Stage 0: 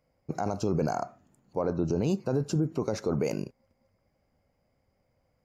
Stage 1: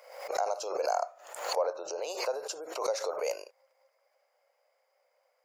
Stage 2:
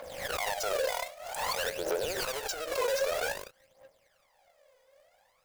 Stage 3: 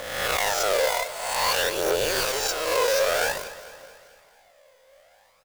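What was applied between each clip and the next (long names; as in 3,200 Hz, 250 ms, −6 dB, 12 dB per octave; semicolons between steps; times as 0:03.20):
dynamic equaliser 1,600 Hz, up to −6 dB, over −46 dBFS, Q 0.78; elliptic high-pass filter 530 Hz, stop band 60 dB; background raised ahead of every attack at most 75 dB per second; level +4.5 dB
each half-wave held at its own peak; phase shifter 0.52 Hz, delay 2.1 ms, feedback 71%; brickwall limiter −23.5 dBFS, peak gain reduction 11.5 dB
peak hold with a rise ahead of every peak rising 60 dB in 0.94 s; repeating echo 219 ms, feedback 55%, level −15.5 dB; level +5 dB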